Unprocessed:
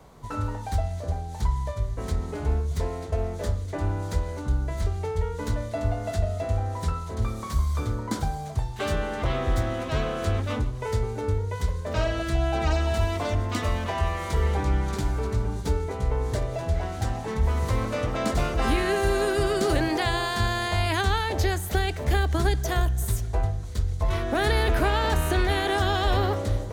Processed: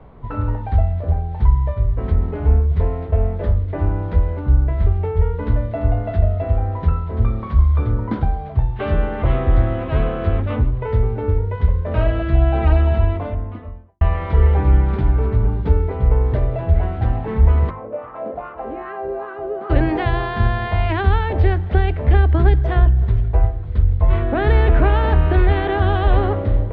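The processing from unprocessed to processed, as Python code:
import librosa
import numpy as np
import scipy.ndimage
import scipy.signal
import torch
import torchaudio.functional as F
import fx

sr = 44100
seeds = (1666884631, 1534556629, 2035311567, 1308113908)

y = fx.studio_fade_out(x, sr, start_s=12.75, length_s=1.26)
y = fx.wah_lfo(y, sr, hz=2.5, low_hz=510.0, high_hz=1200.0, q=2.8, at=(17.69, 19.69), fade=0.02)
y = scipy.signal.sosfilt(scipy.signal.cheby2(4, 60, 9100.0, 'lowpass', fs=sr, output='sos'), y)
y = fx.tilt_eq(y, sr, slope=-2.0)
y = fx.hum_notches(y, sr, base_hz=50, count=7)
y = F.gain(torch.from_numpy(y), 3.5).numpy()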